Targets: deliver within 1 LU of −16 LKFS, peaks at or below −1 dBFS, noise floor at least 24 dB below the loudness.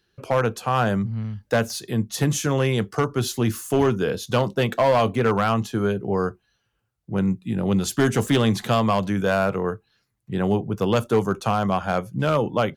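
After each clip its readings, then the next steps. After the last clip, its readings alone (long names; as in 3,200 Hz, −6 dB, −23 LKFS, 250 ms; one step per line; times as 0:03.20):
share of clipped samples 0.9%; peaks flattened at −12.5 dBFS; integrated loudness −23.0 LKFS; sample peak −12.5 dBFS; target loudness −16.0 LKFS
→ clipped peaks rebuilt −12.5 dBFS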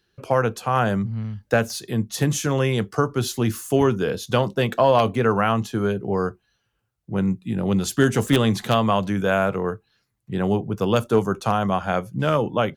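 share of clipped samples 0.0%; integrated loudness −22.0 LKFS; sample peak −3.5 dBFS; target loudness −16.0 LKFS
→ level +6 dB
brickwall limiter −1 dBFS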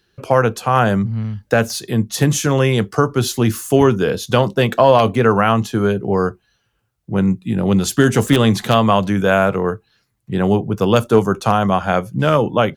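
integrated loudness −16.5 LKFS; sample peak −1.0 dBFS; background noise floor −67 dBFS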